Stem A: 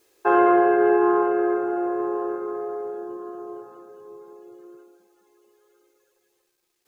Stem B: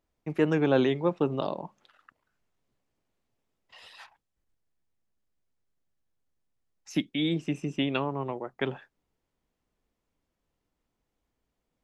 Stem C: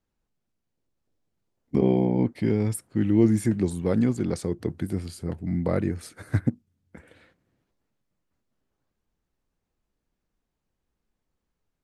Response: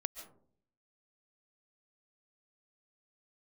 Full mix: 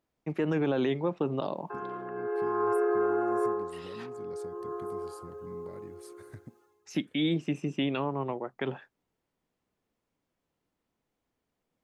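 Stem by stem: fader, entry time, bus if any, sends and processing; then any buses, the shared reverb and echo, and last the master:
+3.0 dB, 1.45 s, no send, brickwall limiter −16 dBFS, peak gain reduction 8 dB; Chebyshev high-pass with heavy ripple 290 Hz, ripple 9 dB; automatic ducking −14 dB, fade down 0.25 s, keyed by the second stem
+0.5 dB, 0.00 s, no send, high-pass filter 100 Hz; high-shelf EQ 4,700 Hz −5 dB
−15.0 dB, 0.00 s, no send, high-shelf EQ 5,500 Hz +8 dB; downward compressor, threshold −29 dBFS, peak gain reduction 15 dB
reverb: not used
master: brickwall limiter −19.5 dBFS, peak gain reduction 8.5 dB

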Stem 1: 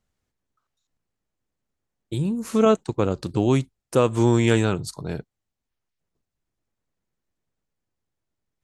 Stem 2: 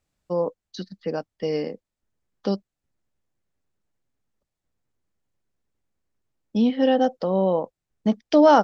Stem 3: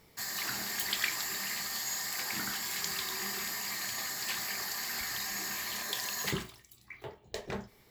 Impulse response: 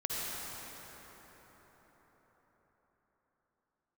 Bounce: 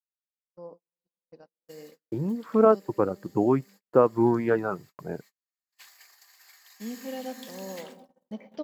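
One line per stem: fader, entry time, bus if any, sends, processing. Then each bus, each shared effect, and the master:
+1.5 dB, 0.00 s, no send, low-pass filter 1,500 Hz 24 dB per octave; reverb reduction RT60 1.5 s; Bessel high-pass filter 250 Hz, order 2
−16.0 dB, 0.25 s, send −11 dB, expander for the loud parts 1.5 to 1, over −29 dBFS
−11.0 dB, 1.50 s, no send, Bessel high-pass filter 720 Hz, order 8; automatic ducking −15 dB, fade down 0.80 s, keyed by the first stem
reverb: on, RT60 5.3 s, pre-delay 47 ms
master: noise gate −46 dBFS, range −45 dB

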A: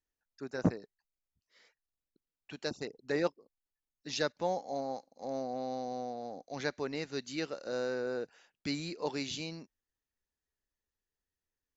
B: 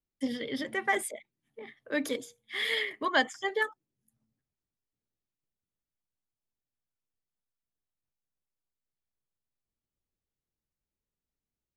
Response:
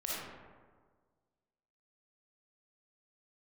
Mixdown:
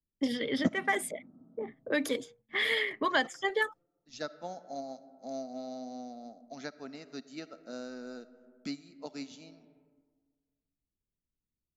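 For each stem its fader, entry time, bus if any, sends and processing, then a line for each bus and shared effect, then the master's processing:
−3.0 dB, 0.00 s, send −18.5 dB, high-shelf EQ 4,300 Hz +11.5 dB; hollow resonant body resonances 240/660/1,300 Hz, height 14 dB, ringing for 45 ms; expander for the loud parts 2.5 to 1, over −48 dBFS
+2.5 dB, 0.00 s, no send, noise gate with hold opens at −54 dBFS; low-pass that shuts in the quiet parts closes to 330 Hz, open at −28 dBFS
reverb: on, RT60 1.6 s, pre-delay 15 ms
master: multiband upward and downward compressor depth 70%

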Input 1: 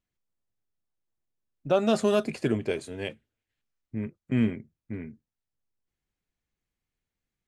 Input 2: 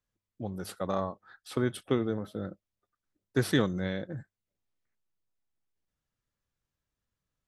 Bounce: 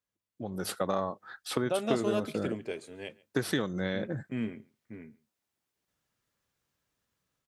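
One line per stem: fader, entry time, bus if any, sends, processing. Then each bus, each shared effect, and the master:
−18.0 dB, 0.00 s, no send, echo send −24 dB, no processing
−3.0 dB, 0.00 s, no send, no echo send, downward compressor 4 to 1, threshold −34 dBFS, peak gain reduction 12 dB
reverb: not used
echo: single-tap delay 138 ms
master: high-pass filter 190 Hz 6 dB per octave; automatic gain control gain up to 11 dB

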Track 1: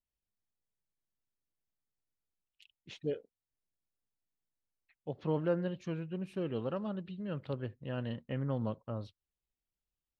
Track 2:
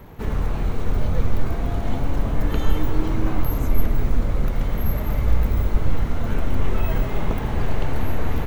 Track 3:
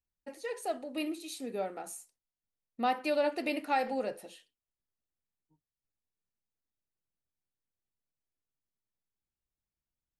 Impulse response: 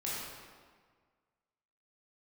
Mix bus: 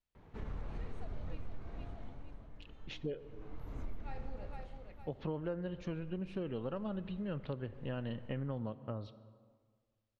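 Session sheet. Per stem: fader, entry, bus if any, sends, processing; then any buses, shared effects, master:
+2.5 dB, 0.00 s, send −20 dB, no echo send, no processing
−16.5 dB, 0.15 s, no send, no echo send, automatic ducking −17 dB, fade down 1.05 s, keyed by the first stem
−17.5 dB, 0.35 s, muted 0:01.41–0:04.01, send −10.5 dB, echo send −6.5 dB, no processing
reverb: on, RT60 1.7 s, pre-delay 15 ms
echo: repeating echo 463 ms, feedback 41%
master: low-pass filter 4,800 Hz 12 dB per octave; downward compressor 5 to 1, threshold −36 dBFS, peak gain reduction 12 dB

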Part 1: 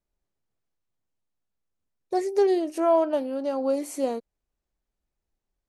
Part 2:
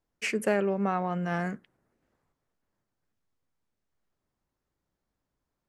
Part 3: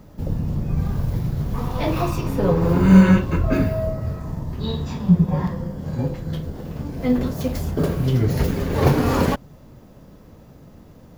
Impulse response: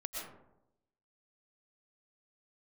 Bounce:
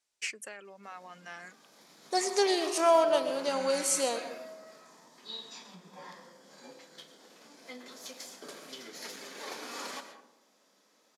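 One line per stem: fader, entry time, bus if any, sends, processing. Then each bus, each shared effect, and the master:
−1.5 dB, 0.00 s, no bus, send −5.5 dB, no processing
−9.0 dB, 0.00 s, bus A, no send, reverb reduction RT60 0.59 s
−17.0 dB, 0.65 s, bus A, send −7.5 dB, Butterworth high-pass 200 Hz 36 dB per octave; notch filter 2,800 Hz, Q 14; automatic ducking −17 dB, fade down 1.75 s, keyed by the second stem
bus A: 0.0 dB, downward compressor 5 to 1, threshold −39 dBFS, peak gain reduction 11 dB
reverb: on, RT60 0.85 s, pre-delay 80 ms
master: meter weighting curve ITU-R 468

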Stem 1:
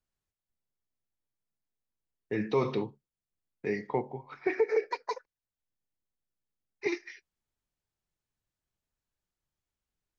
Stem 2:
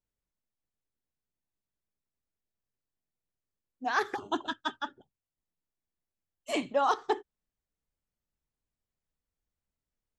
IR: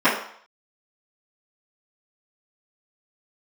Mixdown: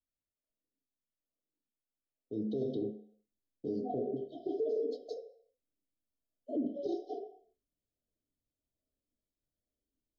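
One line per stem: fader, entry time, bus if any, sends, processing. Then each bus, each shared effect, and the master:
0:02.23 −16.5 dB → 0:02.98 −9.5 dB, 0.00 s, send −20 dB, low-shelf EQ 440 Hz +8.5 dB; notch filter 5,700 Hz, Q 11
−2.5 dB, 0.00 s, send −19 dB, spectral tilt −3 dB per octave; auto-filter band-pass saw down 1.2 Hz 240–2,800 Hz; automatic ducking −10 dB, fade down 0.35 s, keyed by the first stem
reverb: on, RT60 0.60 s, pre-delay 3 ms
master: linear-phase brick-wall band-stop 750–3,000 Hz; brickwall limiter −26.5 dBFS, peak gain reduction 12.5 dB

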